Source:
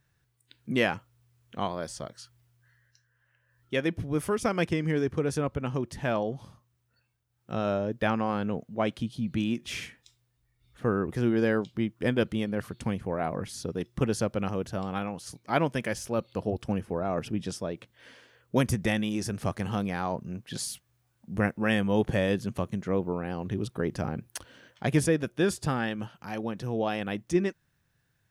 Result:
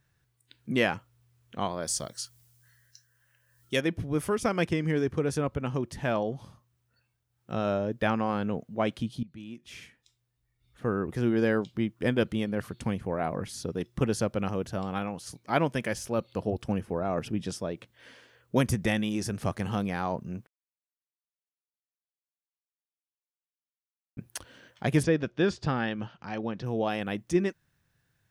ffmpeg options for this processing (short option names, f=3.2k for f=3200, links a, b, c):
-filter_complex "[0:a]asettb=1/sr,asplit=3[a][b][c];[a]atrim=end=1.874[d];[b]atrim=start=1.87:end=3.81,asetpts=PTS-STARTPTS,afade=t=in:d=0.004:c=qsin,afade=t=out:st=1.936:d=0.004:c=qsin,bass=f=250:g=1,treble=f=4k:g=14[e];[c]atrim=start=3.806[f];[d][e]acrossfade=d=0.004:c1=hsin:c2=qsin[g];[g][f]acrossfade=d=0.004:c1=qsin:c2=hsin,asplit=3[h][i][j];[h]afade=t=out:st=25.02:d=0.02[k];[i]lowpass=f=5.5k:w=0.5412,lowpass=f=5.5k:w=1.3066,afade=t=in:st=25.02:d=0.02,afade=t=out:st=26.65:d=0.02[l];[j]afade=t=in:st=26.65:d=0.02[m];[k][l][m]amix=inputs=3:normalize=0,asplit=4[n][o][p][q];[n]atrim=end=9.23,asetpts=PTS-STARTPTS,afade=t=out:st=9.226:d=0.004:c=hsin:silence=0.1[r];[o]atrim=start=9.23:end=20.47,asetpts=PTS-STARTPTS,afade=t=in:d=2.21:silence=0.1,afade=t=out:st=11.236:d=0.004:c=hsin[s];[p]atrim=start=20.47:end=24.17,asetpts=PTS-STARTPTS,volume=0[t];[q]atrim=start=24.17,asetpts=PTS-STARTPTS,afade=t=in:d=0.004:c=hsin[u];[r][s][t][u]concat=n=4:v=0:a=1"